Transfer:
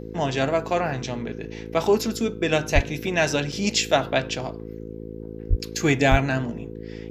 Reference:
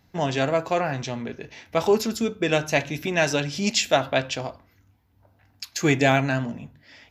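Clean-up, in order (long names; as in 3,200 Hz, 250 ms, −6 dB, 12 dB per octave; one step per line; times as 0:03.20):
hum removal 54.8 Hz, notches 9
0:02.74–0:02.86: high-pass filter 140 Hz 24 dB per octave
0:05.49–0:05.61: high-pass filter 140 Hz 24 dB per octave
0:06.10–0:06.22: high-pass filter 140 Hz 24 dB per octave
repair the gap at 0:03.52, 4.6 ms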